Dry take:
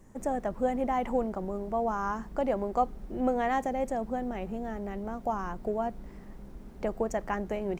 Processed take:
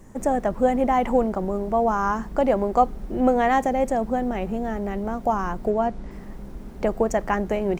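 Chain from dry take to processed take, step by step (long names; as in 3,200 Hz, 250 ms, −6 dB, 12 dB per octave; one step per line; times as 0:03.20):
0:05.70–0:06.11: low-pass filter 7,600 Hz 12 dB per octave
level +8.5 dB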